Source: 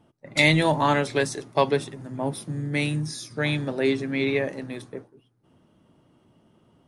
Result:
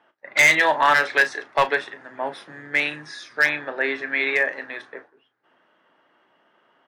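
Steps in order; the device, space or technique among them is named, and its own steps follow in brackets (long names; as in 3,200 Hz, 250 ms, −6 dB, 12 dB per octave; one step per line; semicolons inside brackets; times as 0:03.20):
0:03.46–0:03.95: high-shelf EQ 3,500 Hz −9.5 dB
megaphone (band-pass filter 690–3,100 Hz; parametric band 1,700 Hz +10.5 dB 0.53 octaves; hard clipping −15.5 dBFS, distortion −12 dB; double-tracking delay 34 ms −12 dB)
level +5.5 dB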